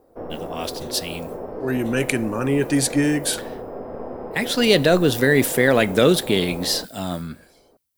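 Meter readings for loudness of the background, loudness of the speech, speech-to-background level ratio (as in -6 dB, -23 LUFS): -33.5 LUFS, -20.0 LUFS, 13.5 dB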